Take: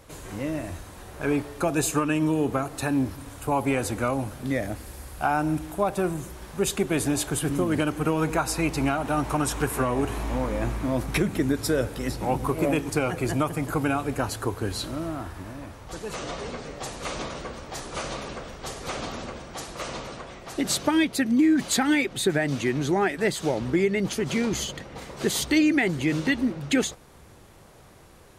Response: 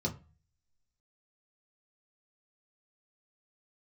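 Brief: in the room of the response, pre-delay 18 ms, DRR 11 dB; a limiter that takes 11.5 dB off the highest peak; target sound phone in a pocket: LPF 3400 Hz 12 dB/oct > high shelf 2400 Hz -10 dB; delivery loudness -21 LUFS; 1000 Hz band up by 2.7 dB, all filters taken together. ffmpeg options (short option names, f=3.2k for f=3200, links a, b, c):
-filter_complex "[0:a]equalizer=f=1k:t=o:g=5.5,alimiter=limit=-19dB:level=0:latency=1,asplit=2[a][b];[1:a]atrim=start_sample=2205,adelay=18[c];[b][c]afir=irnorm=-1:irlink=0,volume=-15dB[d];[a][d]amix=inputs=2:normalize=0,lowpass=3.4k,highshelf=f=2.4k:g=-10,volume=7.5dB"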